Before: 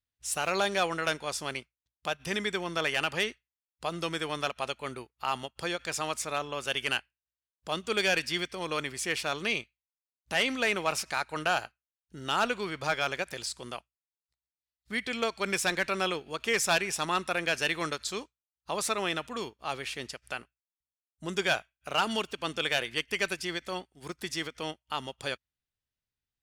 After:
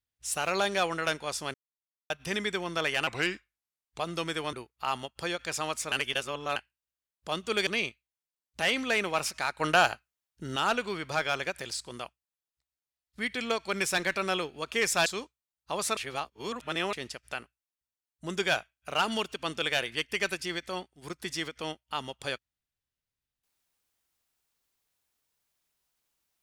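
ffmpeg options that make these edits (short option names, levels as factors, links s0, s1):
-filter_complex "[0:a]asplit=14[s0][s1][s2][s3][s4][s5][s6][s7][s8][s9][s10][s11][s12][s13];[s0]atrim=end=1.54,asetpts=PTS-STARTPTS,afade=t=out:st=1.536:d=0.004:c=hsin[s14];[s1]atrim=start=1.54:end=2.1,asetpts=PTS-STARTPTS,volume=0[s15];[s2]atrim=start=2.1:end=3.074,asetpts=PTS-STARTPTS,afade=t=in:d=0.004:c=hsin[s16];[s3]atrim=start=3.07:end=3.85,asetpts=PTS-STARTPTS,asetrate=37044,aresample=44100[s17];[s4]atrim=start=3.846:end=4.382[s18];[s5]atrim=start=4.928:end=6.322[s19];[s6]atrim=start=6.318:end=6.962,asetpts=PTS-STARTPTS,areverse[s20];[s7]atrim=start=6.958:end=8.072[s21];[s8]atrim=start=9.388:end=11.322[s22];[s9]atrim=start=11.318:end=12.282,asetpts=PTS-STARTPTS,volume=1.88[s23];[s10]atrim=start=12.278:end=16.782[s24];[s11]atrim=start=18.048:end=18.962[s25];[s12]atrim=start=18.958:end=19.922,asetpts=PTS-STARTPTS,areverse[s26];[s13]atrim=start=19.918[s27];[s14][s15][s16]concat=n=3:v=0:a=1[s28];[s28][s17]acrossfade=d=0.004:c1=hsin:c2=hsin[s29];[s29][s18]acrossfade=d=0.004:c1=hsin:c2=hsin[s30];[s30][s19]acrossfade=d=0.004:c1=hsin:c2=hsin[s31];[s31][s20]acrossfade=d=0.004:c1=hsin:c2=hsin[s32];[s32][s21]acrossfade=d=0.004:c1=hsin:c2=hsin[s33];[s33][s22]acrossfade=d=0.004:c1=hsin:c2=hsin[s34];[s34][s23]acrossfade=d=0.004:c1=hsin:c2=hsin[s35];[s35][s24]acrossfade=d=0.004:c1=hsin:c2=hsin[s36];[s36][s25]acrossfade=d=0.004:c1=hsin:c2=hsin[s37];[s37][s26]acrossfade=d=0.004:c1=hsin:c2=hsin[s38];[s38][s27]acrossfade=d=0.004:c1=hsin:c2=hsin"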